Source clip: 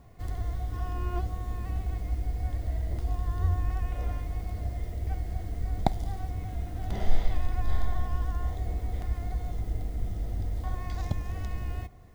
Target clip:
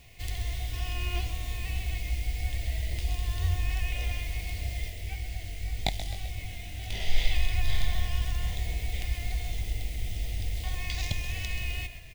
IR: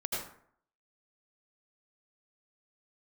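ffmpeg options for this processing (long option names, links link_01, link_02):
-filter_complex "[0:a]equalizer=frequency=250:width=0.8:gain=-7,asplit=3[link_01][link_02][link_03];[link_01]afade=type=out:start_time=4.88:duration=0.02[link_04];[link_02]flanger=delay=18.5:depth=4.4:speed=1.9,afade=type=in:start_time=4.88:duration=0.02,afade=type=out:start_time=7.16:duration=0.02[link_05];[link_03]afade=type=in:start_time=7.16:duration=0.02[link_06];[link_04][link_05][link_06]amix=inputs=3:normalize=0,highshelf=frequency=1800:width_type=q:width=3:gain=11.5,asplit=7[link_07][link_08][link_09][link_10][link_11][link_12][link_13];[link_08]adelay=130,afreqshift=-35,volume=-11.5dB[link_14];[link_09]adelay=260,afreqshift=-70,volume=-17dB[link_15];[link_10]adelay=390,afreqshift=-105,volume=-22.5dB[link_16];[link_11]adelay=520,afreqshift=-140,volume=-28dB[link_17];[link_12]adelay=650,afreqshift=-175,volume=-33.6dB[link_18];[link_13]adelay=780,afreqshift=-210,volume=-39.1dB[link_19];[link_07][link_14][link_15][link_16][link_17][link_18][link_19]amix=inputs=7:normalize=0"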